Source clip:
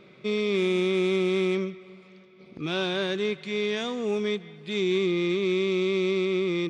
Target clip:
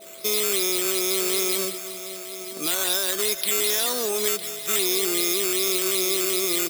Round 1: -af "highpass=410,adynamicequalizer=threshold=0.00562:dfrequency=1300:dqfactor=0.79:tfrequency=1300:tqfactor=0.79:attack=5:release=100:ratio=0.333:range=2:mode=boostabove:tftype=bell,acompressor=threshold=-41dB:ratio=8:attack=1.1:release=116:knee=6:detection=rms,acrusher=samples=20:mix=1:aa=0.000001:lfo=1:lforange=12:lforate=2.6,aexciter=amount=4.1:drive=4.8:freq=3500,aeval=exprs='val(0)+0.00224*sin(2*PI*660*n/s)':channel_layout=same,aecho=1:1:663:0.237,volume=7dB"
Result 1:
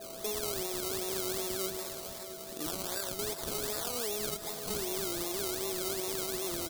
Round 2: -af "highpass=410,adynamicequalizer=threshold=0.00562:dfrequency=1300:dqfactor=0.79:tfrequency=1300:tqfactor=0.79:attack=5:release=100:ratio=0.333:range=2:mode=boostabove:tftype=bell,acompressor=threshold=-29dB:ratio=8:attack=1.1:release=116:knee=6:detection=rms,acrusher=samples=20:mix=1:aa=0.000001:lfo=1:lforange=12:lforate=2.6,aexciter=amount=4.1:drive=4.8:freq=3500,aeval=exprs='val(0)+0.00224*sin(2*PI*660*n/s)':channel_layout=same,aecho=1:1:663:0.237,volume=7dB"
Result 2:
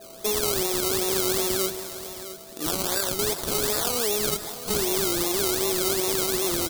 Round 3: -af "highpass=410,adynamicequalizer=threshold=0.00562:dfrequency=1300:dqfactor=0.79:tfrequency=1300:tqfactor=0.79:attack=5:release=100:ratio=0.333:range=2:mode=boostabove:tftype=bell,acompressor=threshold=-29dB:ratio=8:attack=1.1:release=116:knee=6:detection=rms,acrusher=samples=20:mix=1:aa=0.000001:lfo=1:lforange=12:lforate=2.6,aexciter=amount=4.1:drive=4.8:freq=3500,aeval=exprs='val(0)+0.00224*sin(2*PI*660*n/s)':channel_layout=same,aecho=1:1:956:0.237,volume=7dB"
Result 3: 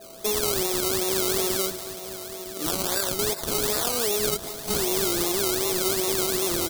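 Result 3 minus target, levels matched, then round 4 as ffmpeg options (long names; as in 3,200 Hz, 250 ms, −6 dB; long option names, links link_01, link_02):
sample-and-hold swept by an LFO: distortion +6 dB
-af "highpass=410,adynamicequalizer=threshold=0.00562:dfrequency=1300:dqfactor=0.79:tfrequency=1300:tqfactor=0.79:attack=5:release=100:ratio=0.333:range=2:mode=boostabove:tftype=bell,acompressor=threshold=-29dB:ratio=8:attack=1.1:release=116:knee=6:detection=rms,acrusher=samples=7:mix=1:aa=0.000001:lfo=1:lforange=4.2:lforate=2.6,aexciter=amount=4.1:drive=4.8:freq=3500,aeval=exprs='val(0)+0.00224*sin(2*PI*660*n/s)':channel_layout=same,aecho=1:1:956:0.237,volume=7dB"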